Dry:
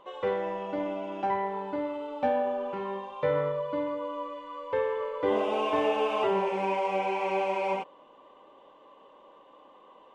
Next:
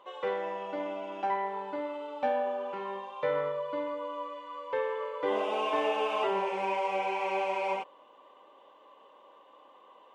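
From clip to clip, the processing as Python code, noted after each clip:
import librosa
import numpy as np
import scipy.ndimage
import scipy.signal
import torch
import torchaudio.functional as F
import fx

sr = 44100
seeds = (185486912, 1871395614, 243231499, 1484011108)

y = fx.highpass(x, sr, hz=530.0, slope=6)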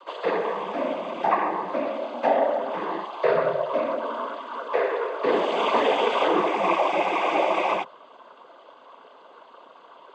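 y = fx.noise_vocoder(x, sr, seeds[0], bands=16)
y = F.gain(torch.from_numpy(y), 8.5).numpy()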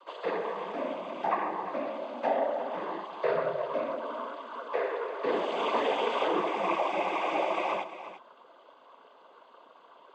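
y = x + 10.0 ** (-12.5 / 20.0) * np.pad(x, (int(348 * sr / 1000.0), 0))[:len(x)]
y = F.gain(torch.from_numpy(y), -7.0).numpy()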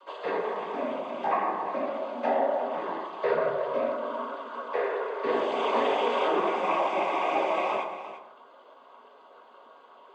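y = fx.rev_fdn(x, sr, rt60_s=0.89, lf_ratio=0.8, hf_ratio=0.45, size_ms=74.0, drr_db=1.5)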